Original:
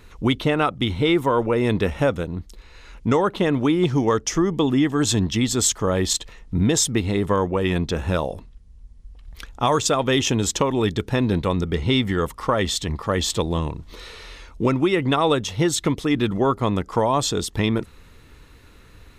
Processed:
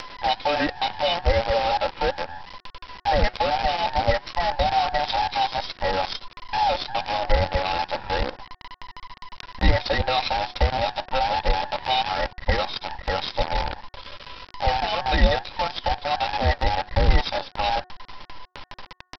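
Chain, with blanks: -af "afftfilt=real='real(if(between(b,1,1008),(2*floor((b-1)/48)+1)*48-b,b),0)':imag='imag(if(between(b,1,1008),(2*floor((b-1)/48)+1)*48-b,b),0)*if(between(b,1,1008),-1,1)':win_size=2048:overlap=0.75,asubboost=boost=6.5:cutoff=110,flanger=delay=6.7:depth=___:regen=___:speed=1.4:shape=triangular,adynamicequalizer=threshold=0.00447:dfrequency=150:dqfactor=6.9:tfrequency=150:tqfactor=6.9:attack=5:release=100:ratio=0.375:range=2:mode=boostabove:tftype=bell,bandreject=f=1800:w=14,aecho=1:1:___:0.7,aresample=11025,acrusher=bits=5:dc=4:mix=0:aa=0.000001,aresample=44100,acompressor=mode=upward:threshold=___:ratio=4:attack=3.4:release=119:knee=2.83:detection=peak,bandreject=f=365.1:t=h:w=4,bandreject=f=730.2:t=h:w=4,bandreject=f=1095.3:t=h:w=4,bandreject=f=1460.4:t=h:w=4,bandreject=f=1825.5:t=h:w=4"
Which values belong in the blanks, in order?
4.4, 74, 3.7, -30dB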